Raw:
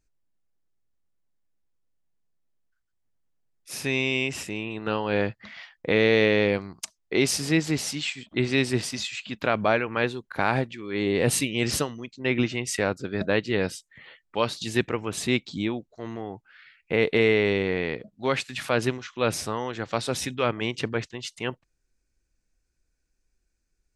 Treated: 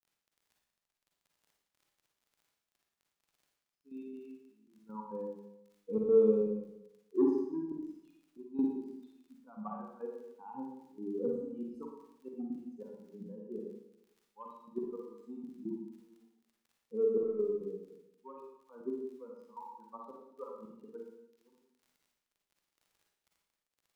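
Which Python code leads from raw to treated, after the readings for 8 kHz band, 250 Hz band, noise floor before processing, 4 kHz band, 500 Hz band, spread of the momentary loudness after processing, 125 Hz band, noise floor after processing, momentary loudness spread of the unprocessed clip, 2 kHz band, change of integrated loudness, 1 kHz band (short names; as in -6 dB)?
under -40 dB, -10.0 dB, -76 dBFS, under -40 dB, -9.0 dB, 21 LU, -23.0 dB, under -85 dBFS, 11 LU, under -40 dB, -10.0 dB, -18.0 dB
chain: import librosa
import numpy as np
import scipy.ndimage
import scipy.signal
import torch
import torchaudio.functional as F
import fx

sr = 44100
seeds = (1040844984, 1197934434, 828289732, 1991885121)

y = fx.bin_expand(x, sr, power=3.0)
y = scipy.signal.sosfilt(scipy.signal.ellip(3, 1.0, 40, [240.0, 970.0], 'bandpass', fs=sr, output='sos'), y)
y = fx.low_shelf(y, sr, hz=340.0, db=8.0)
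y = fx.hum_notches(y, sr, base_hz=50, count=8)
y = y + 0.99 * np.pad(y, (int(0.8 * sr / 1000.0), 0))[:len(y)]
y = fx.dmg_crackle(y, sr, seeds[0], per_s=39.0, level_db=-51.0)
y = 10.0 ** (-14.5 / 20.0) * np.tanh(y / 10.0 ** (-14.5 / 20.0))
y = fx.step_gate(y, sr, bpm=138, pattern='x.xxx..x.', floor_db=-12.0, edge_ms=4.5)
y = fx.rev_schroeder(y, sr, rt60_s=0.87, comb_ms=38, drr_db=-1.5)
y = F.gain(torch.from_numpy(y), -5.0).numpy()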